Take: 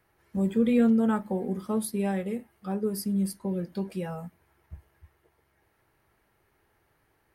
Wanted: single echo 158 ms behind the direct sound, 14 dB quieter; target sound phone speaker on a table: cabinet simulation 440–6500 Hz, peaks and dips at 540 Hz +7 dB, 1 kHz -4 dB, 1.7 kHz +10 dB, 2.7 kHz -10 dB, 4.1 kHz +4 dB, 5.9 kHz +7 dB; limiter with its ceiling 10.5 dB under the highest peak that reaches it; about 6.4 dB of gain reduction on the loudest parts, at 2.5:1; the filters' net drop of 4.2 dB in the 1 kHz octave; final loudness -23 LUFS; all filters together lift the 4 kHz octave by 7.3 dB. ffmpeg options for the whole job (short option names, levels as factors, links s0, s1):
-af "equalizer=f=1000:t=o:g=-6.5,equalizer=f=4000:t=o:g=7,acompressor=threshold=0.0398:ratio=2.5,alimiter=level_in=2.11:limit=0.0631:level=0:latency=1,volume=0.473,highpass=f=440:w=0.5412,highpass=f=440:w=1.3066,equalizer=f=540:t=q:w=4:g=7,equalizer=f=1000:t=q:w=4:g=-4,equalizer=f=1700:t=q:w=4:g=10,equalizer=f=2700:t=q:w=4:g=-10,equalizer=f=4100:t=q:w=4:g=4,equalizer=f=5900:t=q:w=4:g=7,lowpass=f=6500:w=0.5412,lowpass=f=6500:w=1.3066,aecho=1:1:158:0.2,volume=11.2"